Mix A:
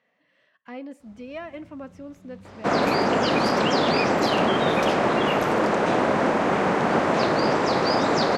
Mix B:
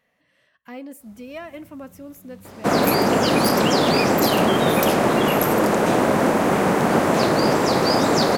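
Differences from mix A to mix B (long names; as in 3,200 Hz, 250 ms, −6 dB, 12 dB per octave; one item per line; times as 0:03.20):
speech: remove high-pass filter 190 Hz
second sound: add low-shelf EQ 470 Hz +6 dB
master: remove high-frequency loss of the air 120 metres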